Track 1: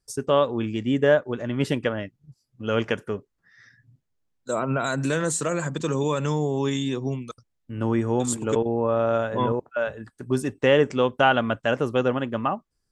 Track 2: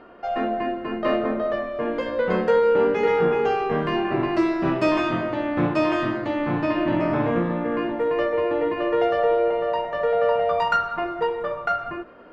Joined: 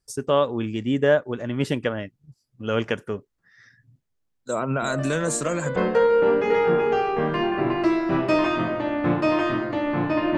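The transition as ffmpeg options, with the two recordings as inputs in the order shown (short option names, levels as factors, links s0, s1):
-filter_complex "[1:a]asplit=2[s0][s1];[0:a]apad=whole_dur=10.37,atrim=end=10.37,atrim=end=5.762[s2];[s1]atrim=start=2.288:end=6.9[s3];[s0]atrim=start=1.35:end=2.29,asetpts=PTS-STARTPTS,volume=0.422,afade=t=in:d=0.004:c=hsin,afade=t=out:st=0.936:d=0.004:c=hsin,adelay=4820[s4];[s2][s3]acrossfade=d=0.004:c1=hsin:c2=hsin[s5];[s5][s4]amix=inputs=2:normalize=0"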